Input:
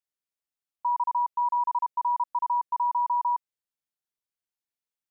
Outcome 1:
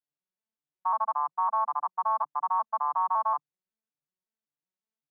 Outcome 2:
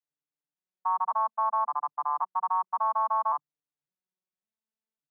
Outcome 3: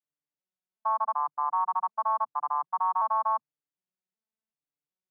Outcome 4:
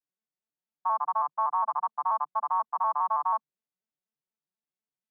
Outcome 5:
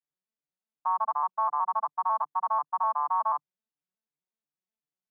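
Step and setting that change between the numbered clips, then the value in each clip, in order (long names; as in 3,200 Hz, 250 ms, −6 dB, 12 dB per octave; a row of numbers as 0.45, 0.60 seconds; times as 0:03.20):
vocoder with an arpeggio as carrier, a note every: 185, 553, 376, 81, 123 milliseconds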